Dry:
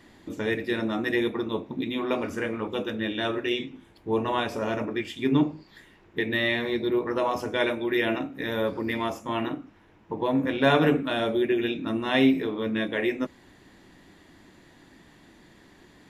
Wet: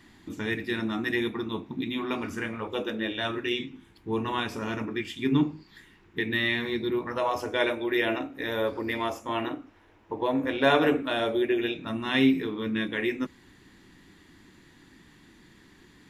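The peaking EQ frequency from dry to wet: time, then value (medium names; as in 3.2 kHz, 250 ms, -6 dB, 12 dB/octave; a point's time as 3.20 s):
peaking EQ -12 dB 0.73 oct
2.44 s 550 Hz
2.96 s 88 Hz
3.35 s 600 Hz
6.93 s 600 Hz
7.44 s 170 Hz
11.66 s 170 Hz
12.12 s 630 Hz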